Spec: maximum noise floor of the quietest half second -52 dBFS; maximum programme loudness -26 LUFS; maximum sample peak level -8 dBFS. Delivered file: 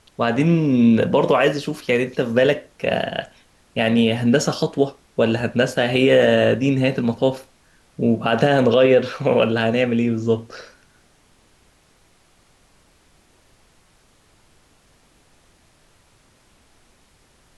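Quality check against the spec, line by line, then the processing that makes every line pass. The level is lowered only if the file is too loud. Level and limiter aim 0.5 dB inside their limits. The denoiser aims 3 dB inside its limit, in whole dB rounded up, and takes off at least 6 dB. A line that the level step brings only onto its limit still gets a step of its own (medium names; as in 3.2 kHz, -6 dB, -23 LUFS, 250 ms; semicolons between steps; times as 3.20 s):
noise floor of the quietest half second -57 dBFS: pass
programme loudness -18.5 LUFS: fail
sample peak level -5.5 dBFS: fail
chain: trim -8 dB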